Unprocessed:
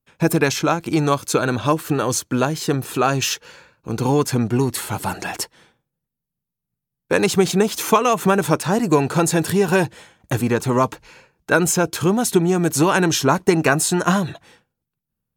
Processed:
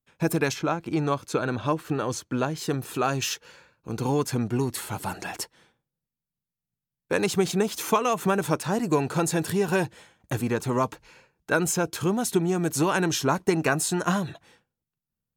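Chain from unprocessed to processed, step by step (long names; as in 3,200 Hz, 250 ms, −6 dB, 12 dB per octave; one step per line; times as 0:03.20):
0:00.53–0:02.57: high-shelf EQ 4,400 Hz → 7,800 Hz −11.5 dB
level −7 dB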